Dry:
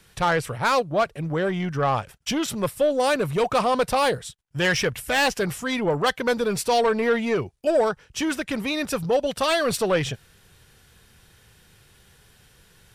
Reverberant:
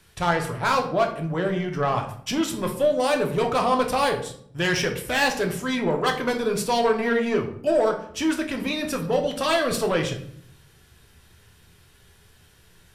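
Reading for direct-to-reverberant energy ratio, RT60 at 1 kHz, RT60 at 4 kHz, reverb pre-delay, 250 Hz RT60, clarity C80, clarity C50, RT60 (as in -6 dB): 2.5 dB, 0.60 s, 0.40 s, 3 ms, 0.90 s, 13.0 dB, 9.5 dB, 0.65 s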